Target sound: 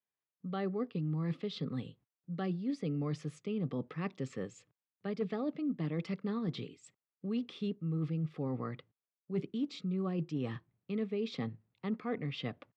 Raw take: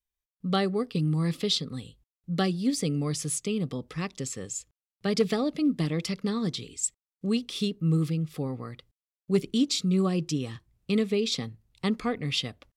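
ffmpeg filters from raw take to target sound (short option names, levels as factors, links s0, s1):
-af "highpass=f=120:w=0.5412,highpass=f=120:w=1.3066,areverse,acompressor=threshold=0.02:ratio=6,areverse,lowpass=2100,volume=1.19"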